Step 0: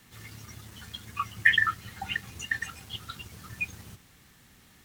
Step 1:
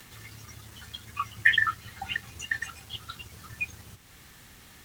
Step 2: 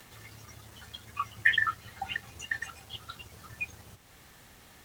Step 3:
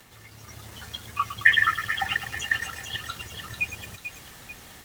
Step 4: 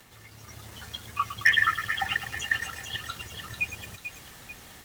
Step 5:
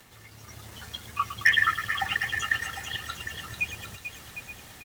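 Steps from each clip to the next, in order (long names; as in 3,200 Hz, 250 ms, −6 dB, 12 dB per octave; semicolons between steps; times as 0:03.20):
noise gate with hold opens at −50 dBFS; parametric band 200 Hz −4.5 dB 1.3 octaves; upward compression, threshold −43 dBFS
parametric band 640 Hz +6.5 dB 1.4 octaves; level −4 dB
automatic gain control gain up to 8 dB; delay with a high-pass on its return 441 ms, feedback 47%, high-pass 2,800 Hz, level −5 dB; feedback echo at a low word length 108 ms, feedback 80%, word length 6 bits, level −11 dB
hard clipping −10.5 dBFS, distortion −16 dB; level −1.5 dB
single-tap delay 756 ms −11.5 dB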